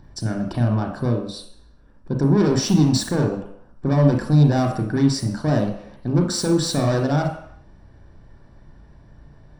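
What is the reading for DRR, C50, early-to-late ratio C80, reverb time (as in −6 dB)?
2.5 dB, 6.0 dB, 9.0 dB, non-exponential decay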